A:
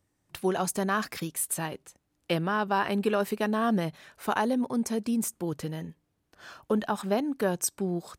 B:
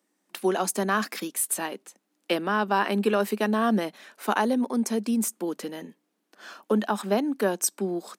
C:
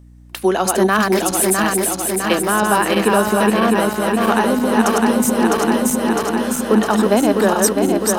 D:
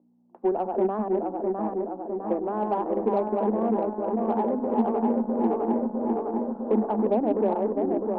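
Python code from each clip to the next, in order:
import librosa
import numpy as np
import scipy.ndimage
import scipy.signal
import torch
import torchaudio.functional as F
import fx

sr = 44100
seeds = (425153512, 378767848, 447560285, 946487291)

y1 = scipy.signal.sosfilt(scipy.signal.cheby1(5, 1.0, 200.0, 'highpass', fs=sr, output='sos'), x)
y1 = y1 * librosa.db_to_amplitude(3.5)
y2 = fx.reverse_delay_fb(y1, sr, ms=328, feedback_pct=82, wet_db=-2.5)
y2 = fx.rider(y2, sr, range_db=10, speed_s=2.0)
y2 = fx.add_hum(y2, sr, base_hz=60, snr_db=27)
y2 = y2 * librosa.db_to_amplitude(7.0)
y3 = scipy.signal.sosfilt(scipy.signal.ellip(3, 1.0, 70, [220.0, 870.0], 'bandpass', fs=sr, output='sos'), y2)
y3 = fx.hum_notches(y3, sr, base_hz=50, count=6)
y3 = fx.cheby_harmonics(y3, sr, harmonics=(8,), levels_db=(-35,), full_scale_db=-4.0)
y3 = y3 * librosa.db_to_amplitude(-7.5)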